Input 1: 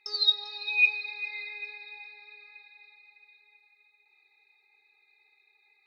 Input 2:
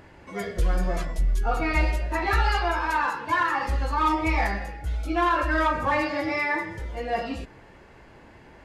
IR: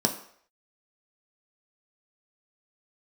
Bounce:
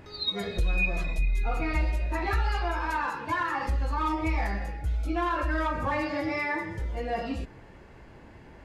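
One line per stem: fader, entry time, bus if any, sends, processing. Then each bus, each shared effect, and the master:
+0.5 dB, 0.00 s, no send, fixed phaser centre 1100 Hz, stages 8
-3.0 dB, 0.00 s, no send, low shelf 320 Hz +6 dB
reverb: off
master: compressor 2:1, threshold -27 dBFS, peak gain reduction 7.5 dB

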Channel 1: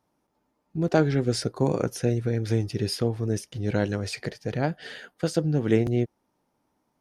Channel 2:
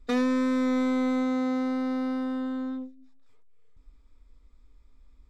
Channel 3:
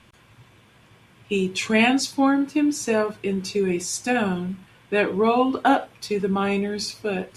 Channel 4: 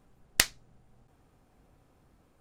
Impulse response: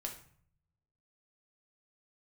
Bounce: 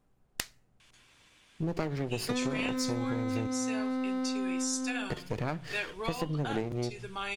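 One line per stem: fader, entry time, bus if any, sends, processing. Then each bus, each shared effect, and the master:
-1.5 dB, 0.85 s, muted 3.47–5.1, send -11.5 dB, minimum comb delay 0.44 ms
+1.0 dB, 2.20 s, no send, dry
-11.5 dB, 0.80 s, no send, weighting filter ITU-R 468
-8.5 dB, 0.00 s, send -20.5 dB, dry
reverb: on, RT60 0.55 s, pre-delay 3 ms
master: compressor 6:1, threshold -29 dBFS, peak gain reduction 13 dB

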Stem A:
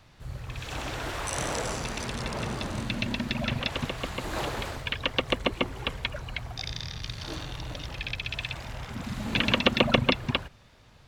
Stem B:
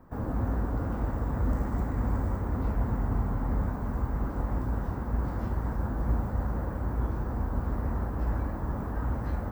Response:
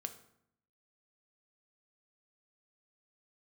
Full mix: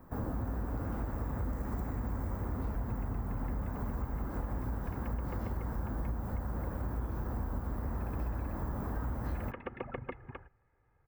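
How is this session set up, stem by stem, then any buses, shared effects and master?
-16.5 dB, 0.00 s, no send, steep low-pass 2000 Hz 36 dB/oct; comb 2.4 ms, depth 53%
-0.5 dB, 0.00 s, no send, high shelf 10000 Hz +11.5 dB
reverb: off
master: compressor, threshold -32 dBFS, peak gain reduction 10.5 dB

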